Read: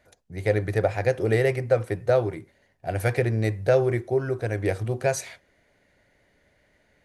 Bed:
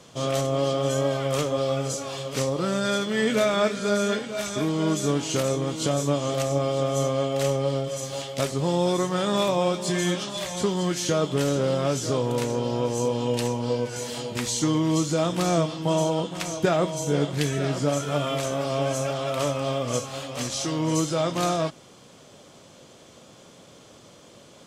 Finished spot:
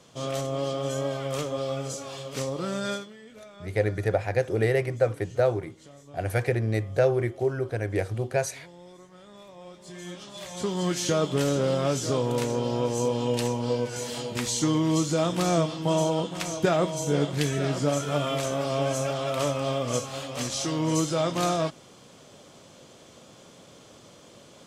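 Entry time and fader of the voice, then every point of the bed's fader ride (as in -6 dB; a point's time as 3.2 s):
3.30 s, -2.0 dB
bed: 2.92 s -5 dB
3.19 s -25.5 dB
9.47 s -25.5 dB
10.87 s -1 dB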